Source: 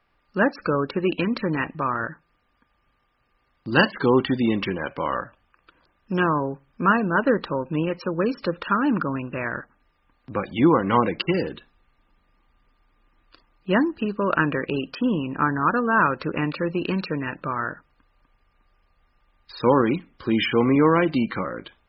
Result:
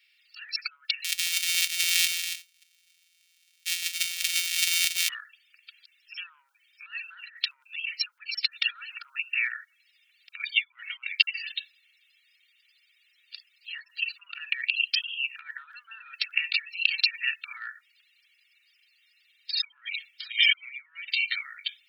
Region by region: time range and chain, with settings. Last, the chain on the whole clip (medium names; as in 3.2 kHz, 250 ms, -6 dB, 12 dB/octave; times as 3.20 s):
1.04–5.09 s: sorted samples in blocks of 256 samples + delay 280 ms -9.5 dB
whole clip: comb 2.2 ms, depth 65%; compressor with a negative ratio -26 dBFS, ratio -1; steep high-pass 2.3 kHz 36 dB/octave; trim +8 dB